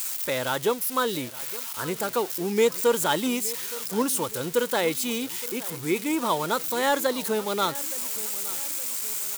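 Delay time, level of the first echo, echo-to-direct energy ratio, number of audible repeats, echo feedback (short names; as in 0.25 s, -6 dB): 0.868 s, -18.0 dB, -17.0 dB, 3, 49%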